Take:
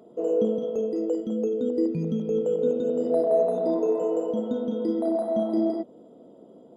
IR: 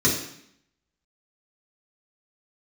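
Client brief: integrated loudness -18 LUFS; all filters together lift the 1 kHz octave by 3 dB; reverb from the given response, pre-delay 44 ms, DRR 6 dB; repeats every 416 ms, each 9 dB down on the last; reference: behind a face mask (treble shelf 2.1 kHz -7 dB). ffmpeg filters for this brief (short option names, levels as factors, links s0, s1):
-filter_complex "[0:a]equalizer=f=1000:t=o:g=7.5,aecho=1:1:416|832|1248|1664:0.355|0.124|0.0435|0.0152,asplit=2[s0][s1];[1:a]atrim=start_sample=2205,adelay=44[s2];[s1][s2]afir=irnorm=-1:irlink=0,volume=0.0891[s3];[s0][s3]amix=inputs=2:normalize=0,highshelf=f=2100:g=-7,volume=1.5"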